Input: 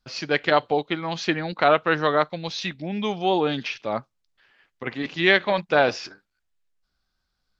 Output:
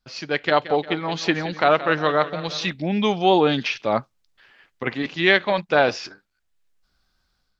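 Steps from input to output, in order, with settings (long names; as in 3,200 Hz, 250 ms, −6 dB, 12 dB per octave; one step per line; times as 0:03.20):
automatic gain control gain up to 9.5 dB
0:00.43–0:02.70: feedback echo with a swinging delay time 176 ms, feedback 52%, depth 51 cents, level −14 dB
level −2 dB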